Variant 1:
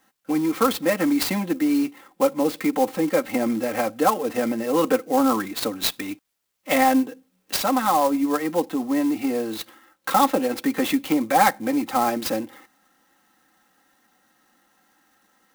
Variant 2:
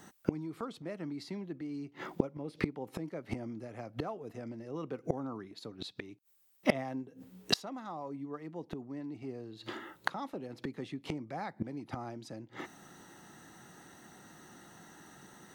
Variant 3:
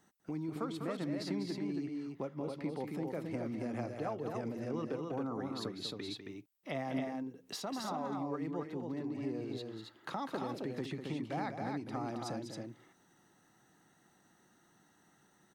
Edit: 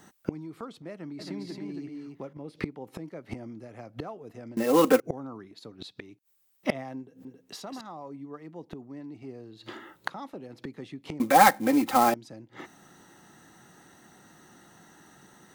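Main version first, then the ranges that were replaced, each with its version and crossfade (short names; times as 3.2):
2
1.19–2.33 from 3
4.57–5 from 1
7.25–7.81 from 3
11.2–12.14 from 1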